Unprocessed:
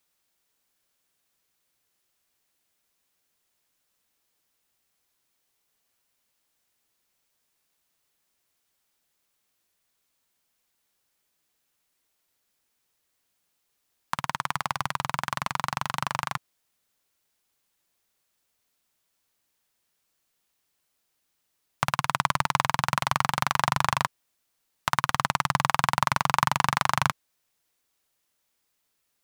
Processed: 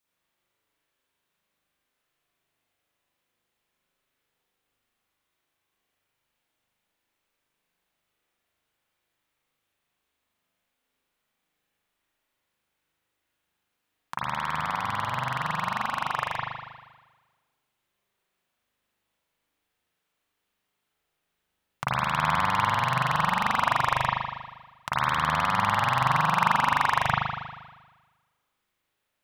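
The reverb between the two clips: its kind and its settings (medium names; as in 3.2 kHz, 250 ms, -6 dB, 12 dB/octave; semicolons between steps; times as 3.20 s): spring tank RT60 1.3 s, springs 39 ms, chirp 45 ms, DRR -9.5 dB; trim -8.5 dB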